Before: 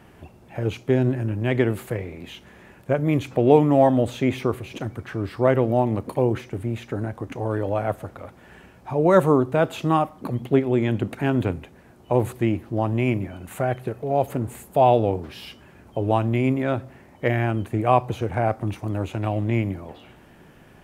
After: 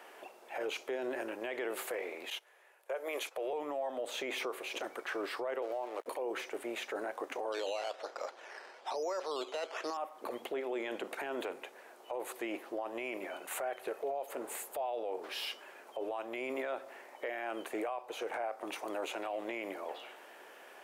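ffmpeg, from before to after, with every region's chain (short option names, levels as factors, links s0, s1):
-filter_complex "[0:a]asettb=1/sr,asplit=3[s0][s1][s2];[s0]atrim=end=2.304[s3];[s1]atrim=start=2.3:end=3.53,asetpts=PTS-STARTPTS,afade=t=in:d=0.004:c=qsin,afade=t=out:st=1.226:d=0.004:c=qsin,highpass=f=400:w=0.5412,highpass=f=400:w=1.3066,equalizer=f=11000:w=2:g=8,agate=range=0.2:threshold=0.00631:ratio=16:release=100:detection=peak[s4];[s2]atrim=start=3.526[s5];[s3][s4]acrossfade=d=0.004:c1=hsin:c2=qsin[s6];[s6][s5]acrossfade=d=0.004:c1=qsin:c2=hsin,asettb=1/sr,asplit=3[s7][s8][s9];[s7]atrim=end=5.624[s10];[s8]atrim=start=5.62:end=6.06,asetpts=PTS-STARTPTS,afade=t=in:d=0.004:c=qsin,afade=t=out:st=0.436:d=0.004:c=qsin,highpass=f=310:w=0.5412,highpass=f=310:w=1.3066,aeval=exprs='sgn(val(0))*max(abs(val(0))-0.00708,0)':c=same[s11];[s9]atrim=start=6.056[s12];[s10][s11]acrossfade=d=0.004:c1=hsin:c2=qsin[s13];[s13][s12]acrossfade=d=0.004:c1=qsin:c2=hsin,asettb=1/sr,asplit=3[s14][s15][s16];[s14]atrim=end=7.524[s17];[s15]atrim=start=7.52:end=9.97,asetpts=PTS-STARTPTS,afade=t=in:d=0.004:c=qsin,afade=t=out:st=2.446:d=0.004:c=qsin,acrusher=samples=10:mix=1:aa=0.000001:lfo=1:lforange=6:lforate=1.1,highpass=290,lowpass=5100[s18];[s16]atrim=start=9.966[s19];[s17][s18]acrossfade=d=0.004:c1=hsin:c2=qsin[s20];[s20][s19]acrossfade=d=0.004:c1=qsin:c2=hsin,highpass=f=450:w=0.5412,highpass=f=450:w=1.3066,acompressor=threshold=0.0355:ratio=5,alimiter=level_in=2:limit=0.0631:level=0:latency=1:release=13,volume=0.501,volume=1.12"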